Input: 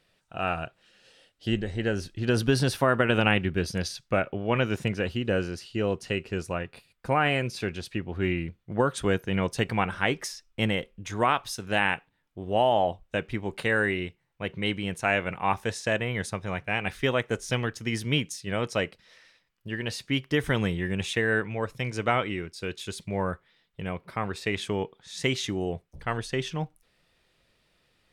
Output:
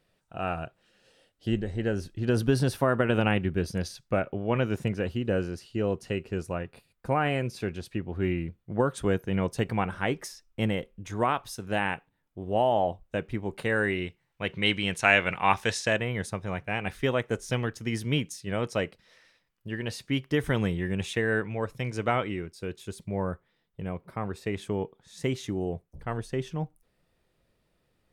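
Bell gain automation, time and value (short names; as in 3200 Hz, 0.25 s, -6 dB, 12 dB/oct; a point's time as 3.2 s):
bell 3500 Hz 3 oct
13.55 s -7 dB
14.03 s -0.5 dB
14.81 s +7 dB
15.73 s +7 dB
16.13 s -4.5 dB
22.22 s -4.5 dB
22.77 s -11 dB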